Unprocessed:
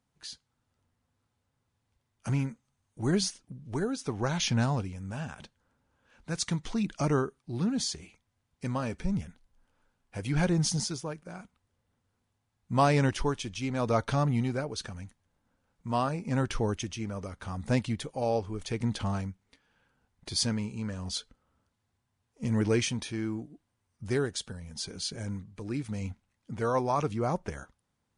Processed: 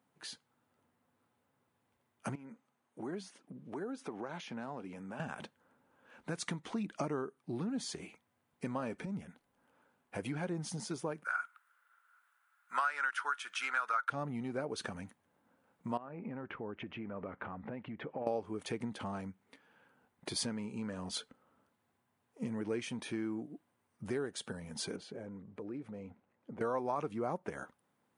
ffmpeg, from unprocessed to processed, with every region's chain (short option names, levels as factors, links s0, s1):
-filter_complex "[0:a]asettb=1/sr,asplit=3[s0][s1][s2];[s0]atrim=end=2.354[s3];[s1]atrim=start=2.35:end=5.2,asetpts=PTS-STARTPTS,afade=t=in:d=0.004:c=qsin,afade=t=out:st=2.846:d=0.004:c=qsin,highpass=200,acompressor=threshold=0.00631:ratio=4:attack=3.2:release=140:knee=1:detection=peak,highshelf=f=4900:g=-7.5[s4];[s2]atrim=start=5.196[s5];[s3][s4]acrossfade=d=0.004:c1=hsin:c2=qsin[s6];[s6][s5]acrossfade=d=0.004:c1=qsin:c2=hsin,asettb=1/sr,asplit=3[s7][s8][s9];[s7]atrim=end=11.244[s10];[s8]atrim=start=11.24:end=14.1,asetpts=PTS-STARTPTS,afade=t=in:d=0.004:c=qsin,afade=t=out:st=2.856:d=0.004:c=qsin,highpass=f=1400:t=q:w=11,highshelf=f=8200:g=6.5[s11];[s9]atrim=start=14.096[s12];[s10][s11]acrossfade=d=0.004:c1=hsin:c2=qsin[s13];[s13][s12]acrossfade=d=0.004:c1=qsin:c2=hsin,asettb=1/sr,asplit=3[s14][s15][s16];[s14]atrim=end=15.974[s17];[s15]atrim=start=15.97:end=18.27,asetpts=PTS-STARTPTS,afade=t=in:d=0.004:c=qsin,afade=t=out:st=2.296:d=0.004:c=qsin,lowpass=f=2500:w=0.5412,lowpass=f=2500:w=1.3066,acompressor=threshold=0.01:ratio=12:attack=3.2:release=140:knee=1:detection=peak[s18];[s16]atrim=start=18.266[s19];[s17][s18]acrossfade=d=0.004:c1=hsin:c2=qsin[s20];[s20][s19]acrossfade=d=0.004:c1=qsin:c2=hsin,asettb=1/sr,asplit=3[s21][s22][s23];[s21]atrim=end=24.964[s24];[s22]atrim=start=24.96:end=26.61,asetpts=PTS-STARTPTS,afade=t=in:d=0.004:c=qsin,afade=t=out:st=1.646:d=0.004:c=qsin,lowpass=f=1700:p=1,equalizer=f=480:t=o:w=0.95:g=6.5,acompressor=threshold=0.00398:ratio=3:attack=3.2:release=140:knee=1:detection=peak[s25];[s23]atrim=start=26.606[s26];[s24][s25]acrossfade=d=0.004:c1=hsin:c2=qsin[s27];[s27][s26]acrossfade=d=0.004:c1=qsin:c2=hsin,equalizer=f=5500:t=o:w=1.7:g=-11.5,acompressor=threshold=0.0126:ratio=6,highpass=220,volume=2"